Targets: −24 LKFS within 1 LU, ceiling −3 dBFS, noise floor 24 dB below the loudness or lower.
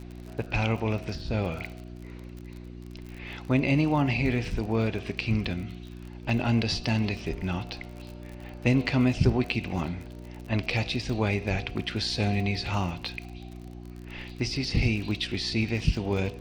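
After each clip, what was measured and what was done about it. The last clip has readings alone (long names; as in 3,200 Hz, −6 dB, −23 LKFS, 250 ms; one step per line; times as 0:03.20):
crackle rate 41 per second; mains hum 60 Hz; hum harmonics up to 360 Hz; level of the hum −41 dBFS; integrated loudness −28.0 LKFS; sample peak −9.0 dBFS; target loudness −24.0 LKFS
→ click removal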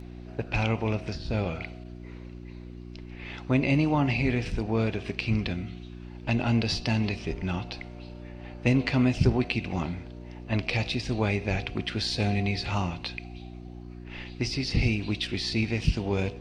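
crackle rate 0.061 per second; mains hum 60 Hz; hum harmonics up to 360 Hz; level of the hum −41 dBFS
→ hum removal 60 Hz, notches 6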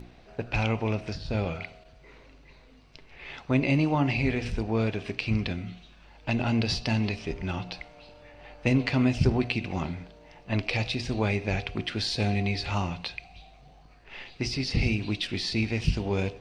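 mains hum none found; integrated loudness −28.5 LKFS; sample peak −10.0 dBFS; target loudness −24.0 LKFS
→ level +4.5 dB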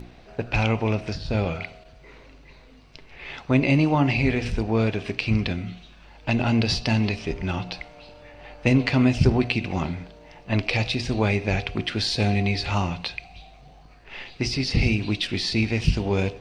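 integrated loudness −24.0 LKFS; sample peak −5.5 dBFS; background noise floor −50 dBFS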